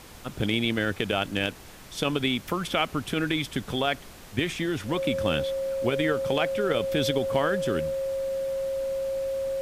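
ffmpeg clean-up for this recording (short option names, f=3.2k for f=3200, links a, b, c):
-af "bandreject=f=540:w=30,afftdn=nr=28:nf=-45"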